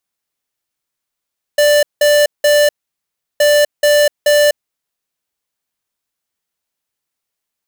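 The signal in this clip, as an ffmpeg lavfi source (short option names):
-f lavfi -i "aevalsrc='0.316*(2*lt(mod(589*t,1),0.5)-1)*clip(min(mod(mod(t,1.82),0.43),0.25-mod(mod(t,1.82),0.43))/0.005,0,1)*lt(mod(t,1.82),1.29)':d=3.64:s=44100"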